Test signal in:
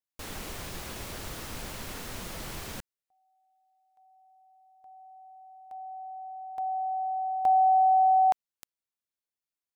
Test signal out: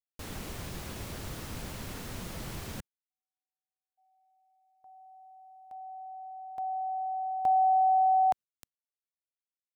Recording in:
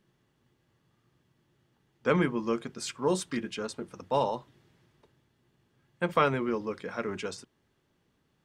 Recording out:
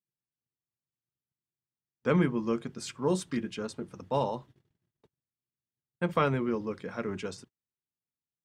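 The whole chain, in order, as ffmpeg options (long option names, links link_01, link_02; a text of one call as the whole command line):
ffmpeg -i in.wav -af "agate=range=-33dB:threshold=-58dB:ratio=3:release=53:detection=rms,equalizer=frequency=120:width=0.43:gain=7,volume=-3.5dB" out.wav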